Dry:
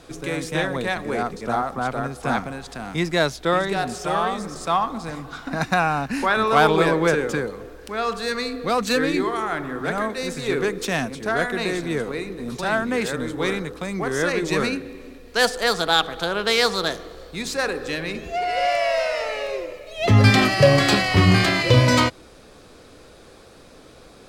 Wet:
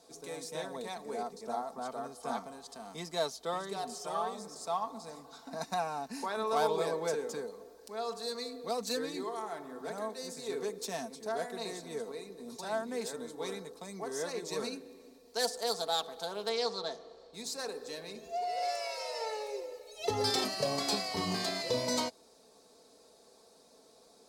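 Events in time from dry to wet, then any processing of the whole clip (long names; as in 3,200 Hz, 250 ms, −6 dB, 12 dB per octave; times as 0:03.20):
0:01.83–0:04.22: hollow resonant body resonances 1,200/3,100 Hz, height 12 dB
0:16.49–0:17.34: low-pass filter 4,300 Hz
0:18.62–0:20.44: comb filter 2.3 ms, depth 97%
whole clip: high-pass filter 720 Hz 6 dB per octave; flat-topped bell 2,000 Hz −12.5 dB; comb filter 4.5 ms, depth 55%; level −9 dB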